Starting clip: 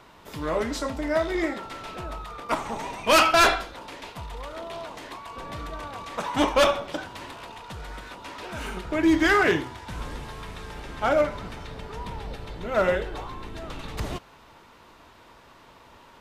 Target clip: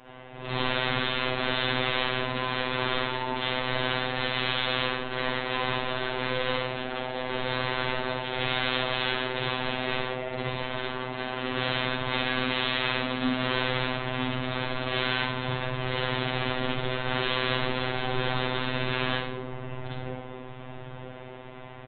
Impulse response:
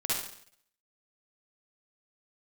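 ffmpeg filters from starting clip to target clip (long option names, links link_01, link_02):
-filter_complex "[0:a]acompressor=threshold=-27dB:ratio=4,asplit=2[link_01][link_02];[link_02]adelay=712,lowpass=frequency=2200:poles=1,volume=-9dB,asplit=2[link_03][link_04];[link_04]adelay=712,lowpass=frequency=2200:poles=1,volume=0.49,asplit=2[link_05][link_06];[link_06]adelay=712,lowpass=frequency=2200:poles=1,volume=0.49,asplit=2[link_07][link_08];[link_08]adelay=712,lowpass=frequency=2200:poles=1,volume=0.49,asplit=2[link_09][link_10];[link_10]adelay=712,lowpass=frequency=2200:poles=1,volume=0.49,asplit=2[link_11][link_12];[link_12]adelay=712,lowpass=frequency=2200:poles=1,volume=0.49[link_13];[link_01][link_03][link_05][link_07][link_09][link_11][link_13]amix=inputs=7:normalize=0,aresample=11025,aeval=exprs='(mod(29.9*val(0)+1,2)-1)/29.9':channel_layout=same,aresample=44100[link_14];[1:a]atrim=start_sample=2205,asetrate=61740,aresample=44100[link_15];[link_14][link_15]afir=irnorm=-1:irlink=0,afftfilt=real='hypot(re,im)*cos(PI*b)':imag='0':win_size=1024:overlap=0.75,asetrate=32667,aresample=44100,volume=6.5dB"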